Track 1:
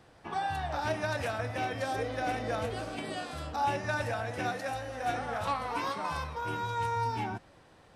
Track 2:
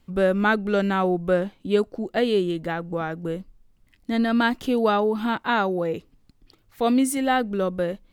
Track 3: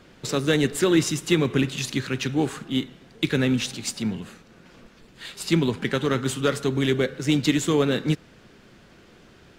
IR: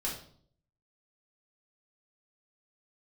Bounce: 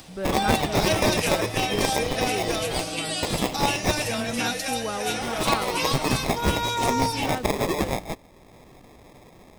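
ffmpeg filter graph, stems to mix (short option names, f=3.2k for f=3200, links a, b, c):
-filter_complex "[0:a]aecho=1:1:6.3:0.58,aexciter=amount=4.2:drive=4.9:freq=2.3k,volume=2.5dB[a];[1:a]volume=-10.5dB[b];[2:a]highpass=f=990:t=q:w=2.4,aemphasis=mode=production:type=50kf,acrusher=samples=30:mix=1:aa=0.000001,volume=0dB[c];[a][b][c]amix=inputs=3:normalize=0,acompressor=mode=upward:threshold=-43dB:ratio=2.5"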